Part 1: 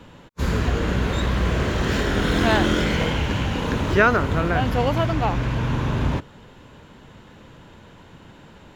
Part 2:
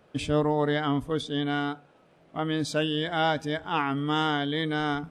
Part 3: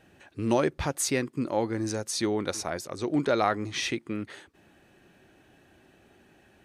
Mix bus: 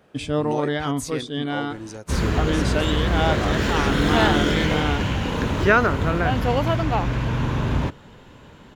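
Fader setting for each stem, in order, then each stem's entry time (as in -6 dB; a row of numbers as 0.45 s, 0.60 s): 0.0 dB, +1.5 dB, -5.5 dB; 1.70 s, 0.00 s, 0.00 s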